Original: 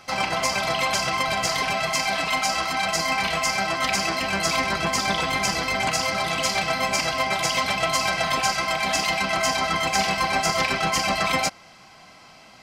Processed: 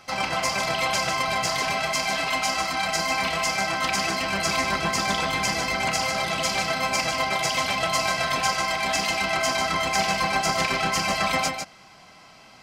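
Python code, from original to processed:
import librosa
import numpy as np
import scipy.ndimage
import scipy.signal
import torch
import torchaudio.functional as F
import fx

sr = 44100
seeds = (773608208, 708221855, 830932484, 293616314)

y = x + 10.0 ** (-6.5 / 20.0) * np.pad(x, (int(151 * sr / 1000.0), 0))[:len(x)]
y = y * 10.0 ** (-2.0 / 20.0)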